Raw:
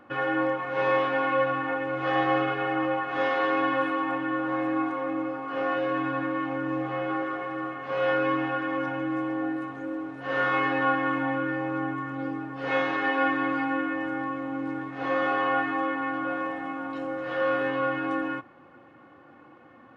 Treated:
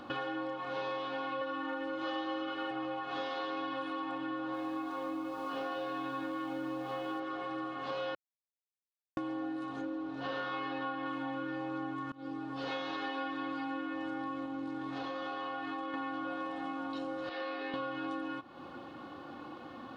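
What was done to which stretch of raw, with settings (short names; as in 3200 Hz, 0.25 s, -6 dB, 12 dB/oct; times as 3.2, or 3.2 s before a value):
1.41–2.71 comb 3.4 ms, depth 99%
4.39–7.2 lo-fi delay 0.147 s, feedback 55%, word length 9-bit, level -9.5 dB
8.15–9.17 mute
9.81–11.06 air absorption 86 m
12.12–13.05 fade in, from -23 dB
14.45–15.94 compressor, threshold -32 dBFS
17.29–17.74 speaker cabinet 410–4500 Hz, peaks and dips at 560 Hz -9 dB, 980 Hz -9 dB, 1400 Hz -10 dB, 2100 Hz +3 dB, 3200 Hz -10 dB
whole clip: graphic EQ 125/500/2000/4000 Hz -6/-4/-11/+12 dB; compressor, threshold -45 dBFS; gain +8.5 dB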